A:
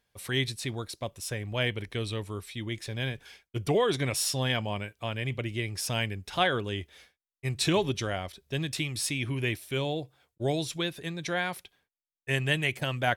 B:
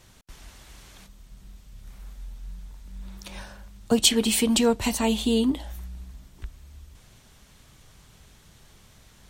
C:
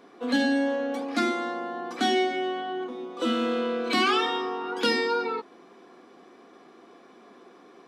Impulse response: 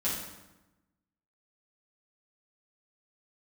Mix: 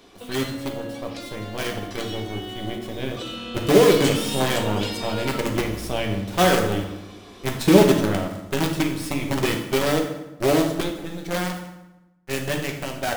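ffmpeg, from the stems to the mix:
-filter_complex "[0:a]equalizer=f=330:w=0.37:g=12,acrusher=bits=4:dc=4:mix=0:aa=0.000001,volume=0.282,asplit=2[s0][s1];[s1]volume=0.631[s2];[1:a]volume=0.376,asplit=2[s3][s4];[s4]volume=0.126[s5];[2:a]highshelf=f=2200:t=q:w=1.5:g=8,acompressor=threshold=0.0355:ratio=6,volume=0.891,asplit=2[s6][s7];[s7]volume=0.168[s8];[s3][s6]amix=inputs=2:normalize=0,acompressor=threshold=0.0112:ratio=6,volume=1[s9];[3:a]atrim=start_sample=2205[s10];[s2][s5][s8]amix=inputs=3:normalize=0[s11];[s11][s10]afir=irnorm=-1:irlink=0[s12];[s0][s9][s12]amix=inputs=3:normalize=0,dynaudnorm=f=460:g=13:m=3.76"

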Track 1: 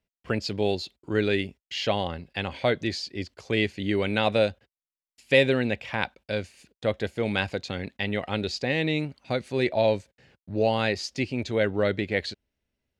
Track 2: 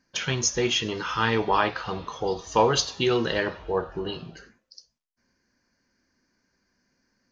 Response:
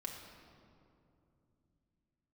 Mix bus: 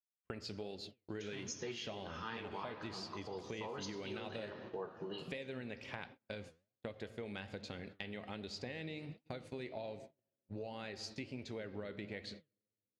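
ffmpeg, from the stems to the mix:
-filter_complex "[0:a]acompressor=threshold=0.0562:ratio=4,volume=0.473,asplit=3[s0][s1][s2];[s1]volume=0.501[s3];[1:a]highpass=f=120:w=0.5412,highpass=f=120:w=1.3066,adelay=1050,volume=0.75,asplit=2[s4][s5];[s5]volume=0.282[s6];[s2]apad=whole_len=368757[s7];[s4][s7]sidechaincompress=threshold=0.00398:ratio=8:attack=16:release=310[s8];[2:a]atrim=start_sample=2205[s9];[s3][s6]amix=inputs=2:normalize=0[s10];[s10][s9]afir=irnorm=-1:irlink=0[s11];[s0][s8][s11]amix=inputs=3:normalize=0,agate=range=0.0141:threshold=0.00794:ratio=16:detection=peak,flanger=delay=3.2:depth=9.6:regen=79:speed=1.3:shape=triangular,acompressor=threshold=0.00794:ratio=4"

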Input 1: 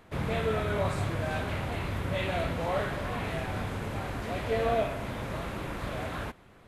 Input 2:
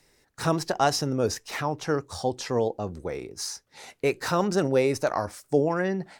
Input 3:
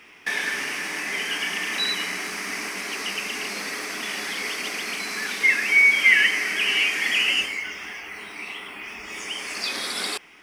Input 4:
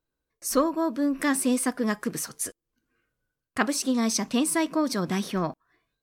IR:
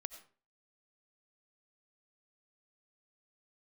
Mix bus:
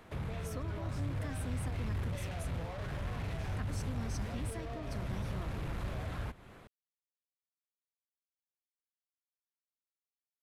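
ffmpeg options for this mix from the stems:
-filter_complex "[0:a]dynaudnorm=f=430:g=5:m=2.82,alimiter=limit=0.15:level=0:latency=1,asoftclip=type=tanh:threshold=0.0335,volume=1[s0];[1:a]volume=0.1[s1];[3:a]volume=0.376[s2];[s0][s1][s2]amix=inputs=3:normalize=0,acrossover=split=140[s3][s4];[s4]acompressor=threshold=0.00562:ratio=4[s5];[s3][s5]amix=inputs=2:normalize=0"

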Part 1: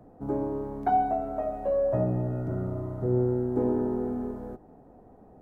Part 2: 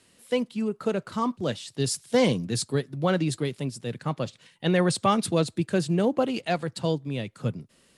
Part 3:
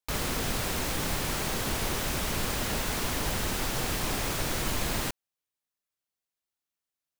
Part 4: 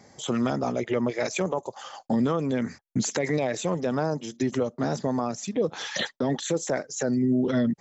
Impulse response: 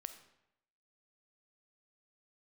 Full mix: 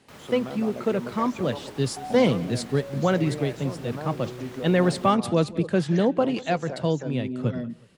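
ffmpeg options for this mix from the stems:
-filter_complex "[0:a]adelay=1100,volume=0.2[s0];[1:a]volume=1.26,asplit=2[s1][s2];[s2]volume=0.1[s3];[2:a]highpass=120,volume=0.237[s4];[3:a]volume=0.266,asplit=2[s5][s6];[s6]volume=0.531[s7];[4:a]atrim=start_sample=2205[s8];[s7][s8]afir=irnorm=-1:irlink=0[s9];[s3]aecho=0:1:182|364|546|728|910:1|0.34|0.116|0.0393|0.0134[s10];[s0][s1][s4][s5][s9][s10]amix=inputs=6:normalize=0,highshelf=f=4900:g=-11.5"

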